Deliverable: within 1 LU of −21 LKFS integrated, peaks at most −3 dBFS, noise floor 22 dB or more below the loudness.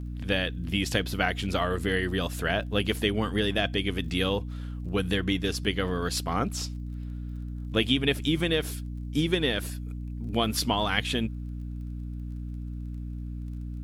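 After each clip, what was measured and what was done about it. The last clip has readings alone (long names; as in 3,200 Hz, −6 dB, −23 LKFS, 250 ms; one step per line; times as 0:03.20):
crackle rate 25 per second; mains hum 60 Hz; hum harmonics up to 300 Hz; level of the hum −33 dBFS; integrated loudness −29.0 LKFS; sample peak −9.5 dBFS; target loudness −21.0 LKFS
→ click removal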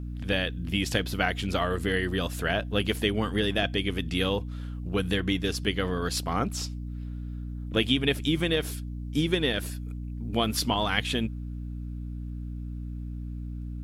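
crackle rate 0.14 per second; mains hum 60 Hz; hum harmonics up to 300 Hz; level of the hum −33 dBFS
→ hum removal 60 Hz, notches 5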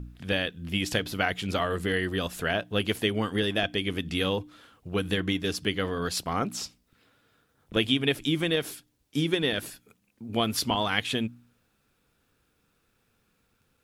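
mains hum none found; integrated loudness −28.5 LKFS; sample peak −9.0 dBFS; target loudness −21.0 LKFS
→ level +7.5 dB
brickwall limiter −3 dBFS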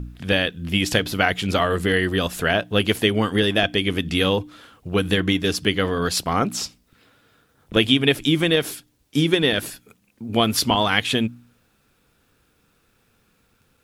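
integrated loudness −21.0 LKFS; sample peak −3.0 dBFS; background noise floor −64 dBFS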